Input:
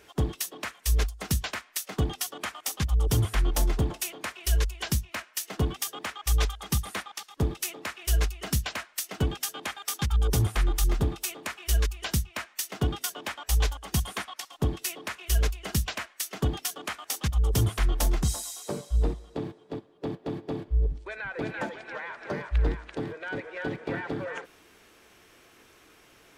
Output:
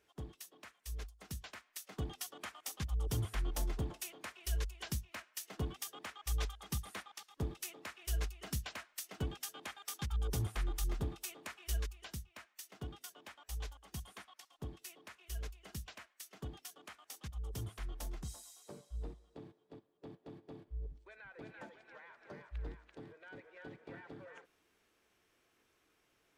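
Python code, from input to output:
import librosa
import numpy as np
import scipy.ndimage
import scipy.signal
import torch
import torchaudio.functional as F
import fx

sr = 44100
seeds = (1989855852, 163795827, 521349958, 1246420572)

y = fx.gain(x, sr, db=fx.line((1.13, -19.5), (2.23, -12.0), (11.73, -12.0), (12.16, -18.5)))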